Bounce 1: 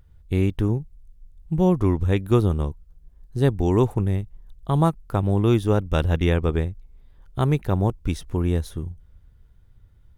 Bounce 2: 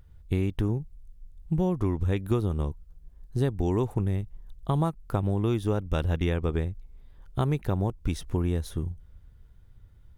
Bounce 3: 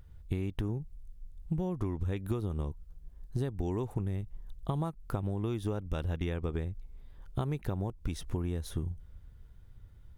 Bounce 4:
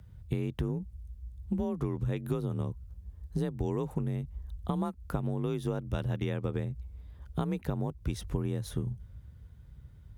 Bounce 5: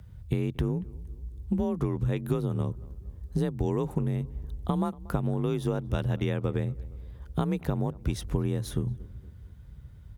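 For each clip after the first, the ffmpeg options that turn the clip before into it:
-af "acompressor=threshold=0.0794:ratio=5"
-af "acompressor=threshold=0.0355:ratio=6"
-af "afreqshift=35,volume=1.12"
-filter_complex "[0:a]asplit=2[s0][s1];[s1]adelay=233,lowpass=f=1400:p=1,volume=0.0891,asplit=2[s2][s3];[s3]adelay=233,lowpass=f=1400:p=1,volume=0.53,asplit=2[s4][s5];[s5]adelay=233,lowpass=f=1400:p=1,volume=0.53,asplit=2[s6][s7];[s7]adelay=233,lowpass=f=1400:p=1,volume=0.53[s8];[s0][s2][s4][s6][s8]amix=inputs=5:normalize=0,volume=1.58"

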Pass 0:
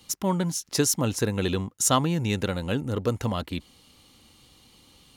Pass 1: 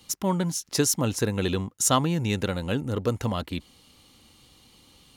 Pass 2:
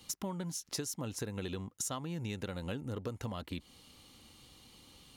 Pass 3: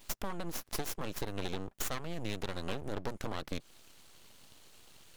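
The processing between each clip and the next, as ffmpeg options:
-af anull
-af "acompressor=threshold=0.0224:ratio=10,volume=0.75"
-af "aeval=exprs='0.075*(cos(1*acos(clip(val(0)/0.075,-1,1)))-cos(1*PI/2))+0.00944*(cos(6*acos(clip(val(0)/0.075,-1,1)))-cos(6*PI/2))':c=same,aeval=exprs='abs(val(0))':c=same,volume=1.26"

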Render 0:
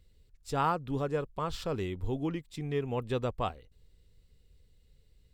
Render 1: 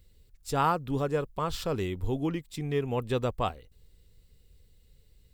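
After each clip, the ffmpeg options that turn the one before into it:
-af "highshelf=f=10000:g=10.5,volume=1.41"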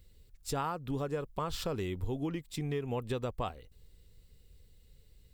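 -af "acompressor=threshold=0.0282:ratio=6"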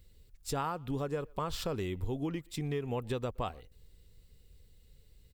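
-filter_complex "[0:a]asplit=2[s0][s1];[s1]adelay=120,highpass=300,lowpass=3400,asoftclip=type=hard:threshold=0.0316,volume=0.0501[s2];[s0][s2]amix=inputs=2:normalize=0"

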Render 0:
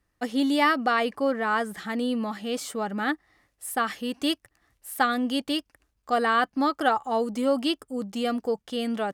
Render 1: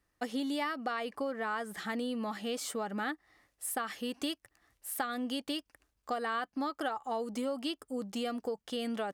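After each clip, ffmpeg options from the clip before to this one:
-af "bass=f=250:g=-4,treble=f=4000:g=1,acompressor=threshold=0.0316:ratio=6,volume=0.794"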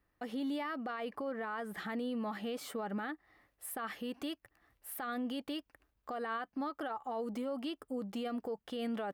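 -af "equalizer=f=7100:w=0.69:g=-12.5,alimiter=level_in=2.51:limit=0.0631:level=0:latency=1:release=40,volume=0.398,volume=1.12"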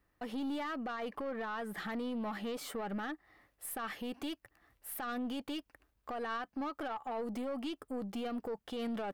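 -af "aeval=exprs='(tanh(56.2*val(0)+0.2)-tanh(0.2))/56.2':c=same,volume=1.33"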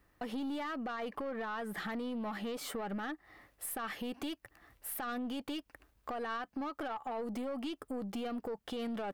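-af "acompressor=threshold=0.00398:ratio=2,volume=2.11"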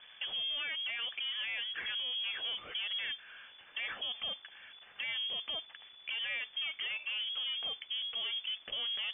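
-af "aeval=exprs='val(0)+0.5*0.00316*sgn(val(0))':c=same,lowpass=f=3000:t=q:w=0.5098,lowpass=f=3000:t=q:w=0.6013,lowpass=f=3000:t=q:w=0.9,lowpass=f=3000:t=q:w=2.563,afreqshift=-3500"

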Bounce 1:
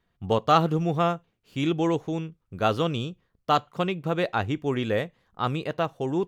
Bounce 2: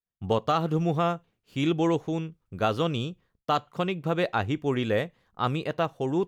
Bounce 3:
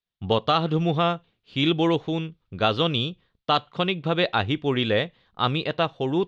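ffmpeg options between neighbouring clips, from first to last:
-af "agate=range=0.0224:threshold=0.00141:ratio=3:detection=peak,alimiter=limit=0.224:level=0:latency=1:release=214"
-af "lowpass=f=3700:t=q:w=3,volume=1.33"

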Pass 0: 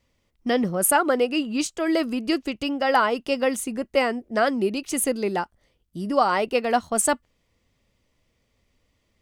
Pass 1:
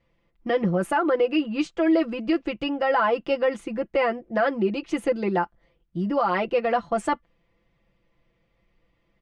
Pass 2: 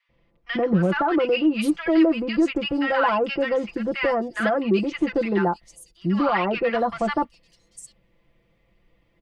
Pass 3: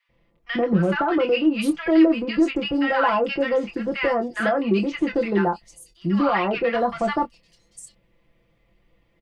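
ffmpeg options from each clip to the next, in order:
-af "lowpass=2500,aecho=1:1:5.9:0.81,alimiter=limit=0.211:level=0:latency=1:release=44"
-filter_complex "[0:a]acrossover=split=420|780[s0][s1][s2];[s1]asoftclip=type=tanh:threshold=0.02[s3];[s0][s3][s2]amix=inputs=3:normalize=0,acrossover=split=1200|5900[s4][s5][s6];[s4]adelay=90[s7];[s6]adelay=790[s8];[s7][s5][s8]amix=inputs=3:normalize=0,volume=1.68"
-filter_complex "[0:a]asplit=2[s0][s1];[s1]adelay=25,volume=0.355[s2];[s0][s2]amix=inputs=2:normalize=0"

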